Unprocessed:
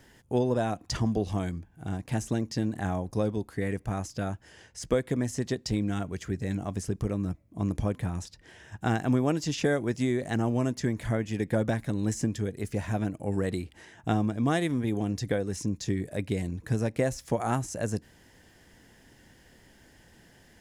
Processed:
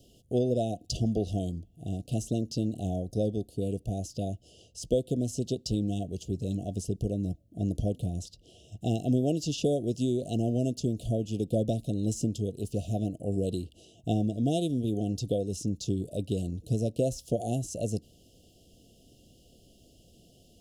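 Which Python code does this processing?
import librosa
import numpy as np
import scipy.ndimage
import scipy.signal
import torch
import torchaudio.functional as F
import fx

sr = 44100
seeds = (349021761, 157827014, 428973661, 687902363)

y = scipy.signal.sosfilt(scipy.signal.cheby1(5, 1.0, [710.0, 2800.0], 'bandstop', fs=sr, output='sos'), x)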